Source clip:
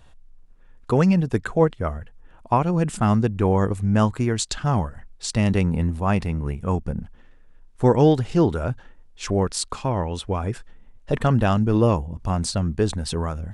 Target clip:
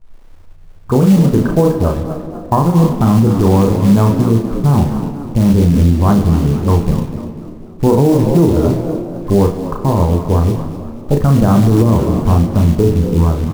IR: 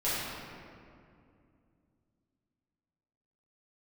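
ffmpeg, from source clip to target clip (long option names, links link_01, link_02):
-filter_complex "[0:a]bandreject=frequency=60:width_type=h:width=6,bandreject=frequency=120:width_type=h:width=6,bandreject=frequency=180:width_type=h:width=6,bandreject=frequency=240:width_type=h:width=6,bandreject=frequency=300:width_type=h:width=6,bandreject=frequency=360:width_type=h:width=6,bandreject=frequency=420:width_type=h:width=6,bandreject=frequency=480:width_type=h:width=6,bandreject=frequency=540:width_type=h:width=6,afwtdn=0.0316,lowpass=frequency=1100:width=0.5412,lowpass=frequency=1100:width=1.3066,equalizer=frequency=700:width_type=o:width=1.3:gain=-7.5,acrusher=bits=6:mode=log:mix=0:aa=0.000001,asplit=2[link_01][link_02];[link_02]adelay=35,volume=-5dB[link_03];[link_01][link_03]amix=inputs=2:normalize=0,asplit=5[link_04][link_05][link_06][link_07][link_08];[link_05]adelay=247,afreqshift=71,volume=-13.5dB[link_09];[link_06]adelay=494,afreqshift=142,volume=-21dB[link_10];[link_07]adelay=741,afreqshift=213,volume=-28.6dB[link_11];[link_08]adelay=988,afreqshift=284,volume=-36.1dB[link_12];[link_04][link_09][link_10][link_11][link_12]amix=inputs=5:normalize=0,asplit=2[link_13][link_14];[1:a]atrim=start_sample=2205,lowshelf=frequency=190:gain=-11.5[link_15];[link_14][link_15]afir=irnorm=-1:irlink=0,volume=-17.5dB[link_16];[link_13][link_16]amix=inputs=2:normalize=0,alimiter=level_in=13.5dB:limit=-1dB:release=50:level=0:latency=1,volume=-1dB"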